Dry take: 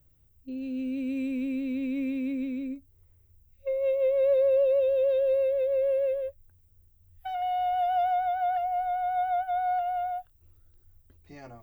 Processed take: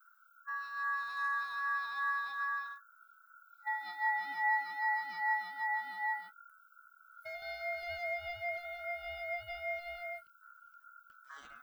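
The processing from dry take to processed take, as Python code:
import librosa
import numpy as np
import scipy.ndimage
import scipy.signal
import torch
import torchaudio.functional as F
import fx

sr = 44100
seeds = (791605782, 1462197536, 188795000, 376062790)

y = fx.phaser_stages(x, sr, stages=2, low_hz=450.0, high_hz=1500.0, hz=2.5, feedback_pct=35)
y = y * np.sin(2.0 * np.pi * 1400.0 * np.arange(len(y)) / sr)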